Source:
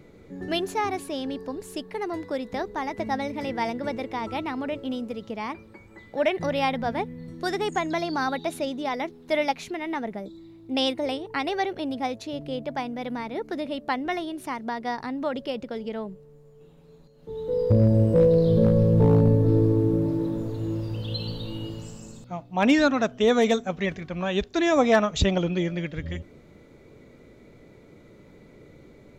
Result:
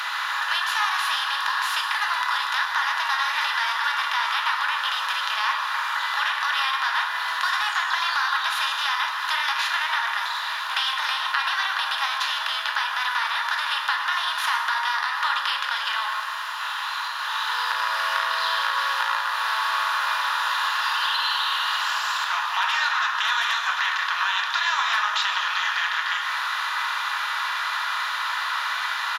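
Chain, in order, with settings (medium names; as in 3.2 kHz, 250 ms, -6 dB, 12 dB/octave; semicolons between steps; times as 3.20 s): spectral levelling over time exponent 0.4; Chebyshev high-pass 1 kHz, order 5; peaking EQ 7.7 kHz -12.5 dB 0.69 oct; band-stop 2.2 kHz, Q 5; compression 4:1, threshold -32 dBFS, peak gain reduction 11 dB; on a send: doubling 14 ms -5 dB + reverberation RT60 2.6 s, pre-delay 7 ms, DRR 0 dB; on the sum: trim +8.5 dB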